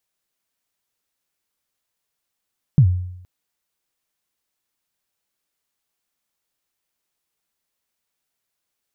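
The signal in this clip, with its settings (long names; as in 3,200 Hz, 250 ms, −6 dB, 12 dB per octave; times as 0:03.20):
synth kick length 0.47 s, from 160 Hz, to 90 Hz, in 81 ms, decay 0.78 s, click off, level −6 dB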